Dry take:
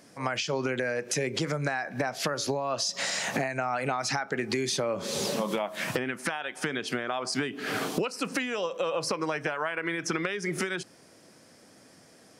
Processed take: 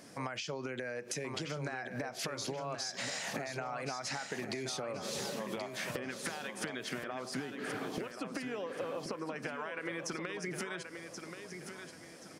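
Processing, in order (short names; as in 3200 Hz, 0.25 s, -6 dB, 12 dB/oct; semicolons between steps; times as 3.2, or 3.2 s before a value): 7.09–9.36 high shelf 2300 Hz -11 dB; compressor 6:1, threshold -38 dBFS, peak gain reduction 14 dB; feedback echo 1.079 s, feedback 36%, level -7.5 dB; gain +1 dB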